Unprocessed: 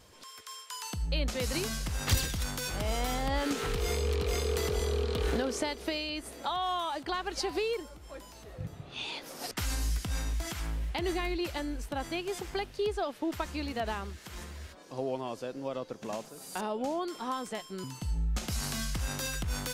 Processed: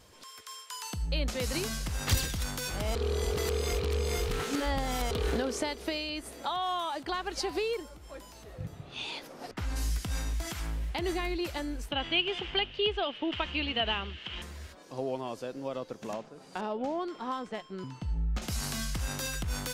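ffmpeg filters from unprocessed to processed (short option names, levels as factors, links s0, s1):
-filter_complex "[0:a]asettb=1/sr,asplit=3[s0][s1][s2];[s0]atrim=end=6.464[s3];[s1]atrim=start=6.46:end=7,asetpts=PTS-STARTPTS,afade=t=in:d=0.004:c=qsin,afade=t=out:st=0.536:d=0.004:c=qsin,highpass=88[s4];[s2]atrim=start=6.996[s5];[s3][s4]acrossfade=d=0.004:c1=hsin:c2=qsin[s6];[s6][s5]acrossfade=d=0.004:c1=qsin:c2=hsin,asplit=3[s7][s8][s9];[s7]afade=t=out:st=9.26:d=0.02[s10];[s8]lowpass=f=1400:p=1,afade=t=in:st=9.26:d=0.02,afade=t=out:st=9.75:d=0.02[s11];[s9]afade=t=in:st=9.75:d=0.02[s12];[s10][s11][s12]amix=inputs=3:normalize=0,asettb=1/sr,asplit=3[s13][s14][s15];[s13]atrim=end=11.914[s16];[s14]atrim=start=11.91:end=14.42,asetpts=PTS-STARTPTS,afade=t=in:d=0.004:c=qsin,afade=t=out:st=2.506:d=0.004:c=qsin,lowpass=f=3000:t=q:w=8.1[s17];[s15]atrim=start=14.416[s18];[s16][s17]acrossfade=d=0.004:c1=hsin:c2=qsin[s19];[s19][s18]acrossfade=d=0.004:c1=qsin:c2=hsin,asettb=1/sr,asplit=3[s20][s21][s22];[s20]atrim=end=16.134[s23];[s21]atrim=start=16.13:end=18.42,asetpts=PTS-STARTPTS,afade=t=in:d=0.004:c=qsin,afade=t=out:st=2.286:d=0.004:c=qsin,adynamicsmooth=sensitivity=6:basefreq=3100[s24];[s22]atrim=start=18.416[s25];[s23][s24]acrossfade=d=0.004:c1=hsin:c2=qsin[s26];[s26][s25]acrossfade=d=0.004:c1=qsin:c2=hsin,asplit=3[s27][s28][s29];[s27]atrim=end=2.952[s30];[s28]atrim=start=2.948:end=5.112,asetpts=PTS-STARTPTS,areverse[s31];[s29]atrim=start=5.108[s32];[s30][s31]acrossfade=d=0.004:c1=hsin:c2=hsin[s33];[s33][s32]acrossfade=d=0.004:c1=hsin:c2=hsin"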